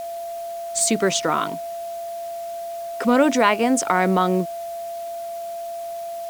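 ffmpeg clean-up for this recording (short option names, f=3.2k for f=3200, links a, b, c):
-af "bandreject=f=680:w=30,afwtdn=0.005"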